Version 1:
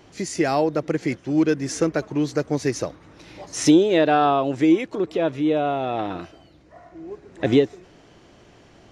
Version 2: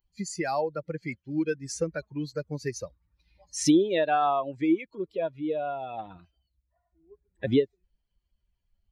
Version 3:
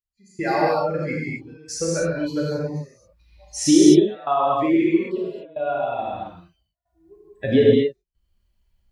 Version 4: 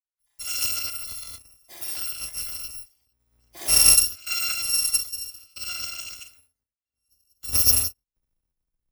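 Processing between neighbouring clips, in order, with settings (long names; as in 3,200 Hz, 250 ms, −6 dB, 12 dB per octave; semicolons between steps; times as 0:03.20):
spectral dynamics exaggerated over time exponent 2; in parallel at −2.5 dB: downward compressor, threshold −29 dBFS, peak gain reduction 15.5 dB; on the sum: level −5 dB
gate pattern "...xxxxxxx" 116 BPM −24 dB; reverb whose tail is shaped and stops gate 290 ms flat, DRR −6.5 dB; level +2 dB
samples in bit-reversed order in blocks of 256 samples; multiband upward and downward expander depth 40%; level −7 dB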